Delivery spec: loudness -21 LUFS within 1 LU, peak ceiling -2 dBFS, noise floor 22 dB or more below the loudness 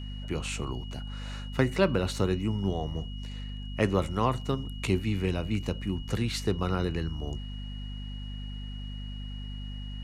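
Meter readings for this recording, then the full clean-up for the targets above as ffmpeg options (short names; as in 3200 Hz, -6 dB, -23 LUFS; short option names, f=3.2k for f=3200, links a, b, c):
hum 50 Hz; harmonics up to 250 Hz; hum level -35 dBFS; steady tone 2900 Hz; tone level -47 dBFS; loudness -31.5 LUFS; peak -9.5 dBFS; loudness target -21.0 LUFS
-> -af "bandreject=f=50:t=h:w=4,bandreject=f=100:t=h:w=4,bandreject=f=150:t=h:w=4,bandreject=f=200:t=h:w=4,bandreject=f=250:t=h:w=4"
-af "bandreject=f=2.9k:w=30"
-af "volume=10.5dB,alimiter=limit=-2dB:level=0:latency=1"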